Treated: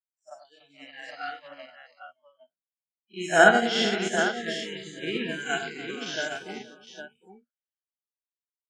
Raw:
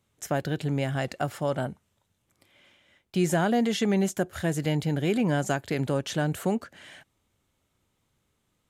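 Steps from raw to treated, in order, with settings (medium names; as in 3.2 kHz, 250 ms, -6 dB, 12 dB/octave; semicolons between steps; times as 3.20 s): every event in the spectrogram widened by 120 ms; in parallel at -6 dB: bit crusher 6-bit; on the sum: spectral noise reduction 30 dB; cabinet simulation 290–7300 Hz, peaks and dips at 430 Hz -4 dB, 650 Hz +6 dB, 1 kHz -8 dB, 1.5 kHz +8 dB, 3.1 kHz +5 dB, 5.4 kHz +5 dB; on a send: multi-tap echo 69/98/292/479/572/809 ms -6.5/-5/-10.5/-10.5/-12/-3 dB; on the sum: upward expansion 2.5:1, over -36 dBFS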